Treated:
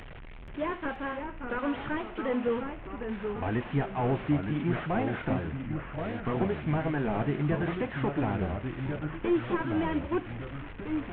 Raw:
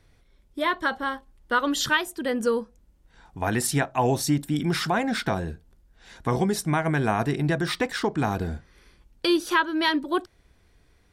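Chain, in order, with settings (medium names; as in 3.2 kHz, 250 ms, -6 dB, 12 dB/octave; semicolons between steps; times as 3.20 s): one-bit delta coder 16 kbps, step -34 dBFS; flange 0.6 Hz, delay 1.1 ms, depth 6.9 ms, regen -76%; ever faster or slower copies 478 ms, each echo -2 st, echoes 3, each echo -6 dB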